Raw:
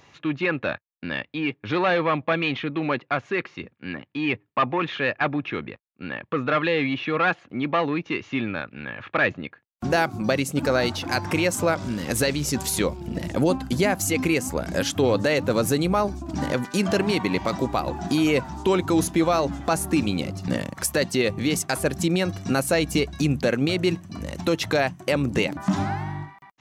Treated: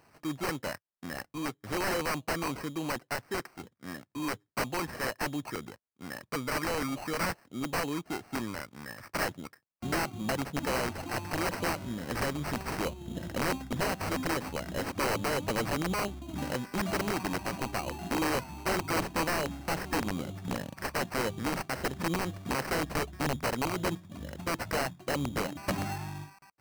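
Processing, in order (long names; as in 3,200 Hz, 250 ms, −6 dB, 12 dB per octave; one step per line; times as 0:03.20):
sample-rate reduction 3,500 Hz, jitter 0%
wrap-around overflow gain 15 dB
level −8.5 dB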